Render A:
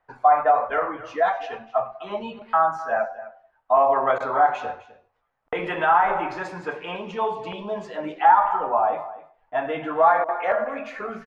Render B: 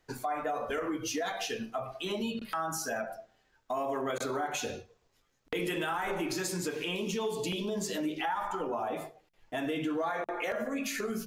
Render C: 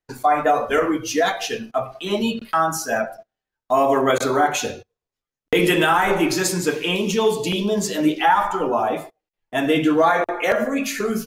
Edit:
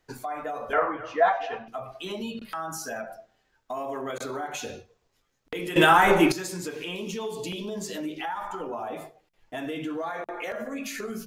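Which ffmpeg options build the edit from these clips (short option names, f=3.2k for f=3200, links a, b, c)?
-filter_complex "[1:a]asplit=3[a][b][c];[a]atrim=end=0.732[d];[0:a]atrim=start=0.728:end=1.682[e];[b]atrim=start=1.678:end=5.762[f];[2:a]atrim=start=5.758:end=6.322[g];[c]atrim=start=6.318[h];[d][e]acrossfade=d=0.004:c1=hsin:c2=hsin[i];[i][f]acrossfade=d=0.004:c1=hsin:c2=hsin[j];[j][g]acrossfade=d=0.004:c1=hsin:c2=hsin[k];[k][h]acrossfade=d=0.004:c1=hsin:c2=hsin"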